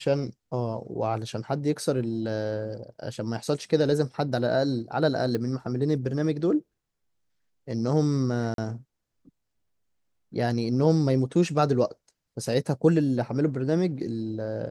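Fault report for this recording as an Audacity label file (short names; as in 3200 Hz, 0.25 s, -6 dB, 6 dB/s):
5.350000	5.350000	pop -17 dBFS
8.540000	8.580000	gap 42 ms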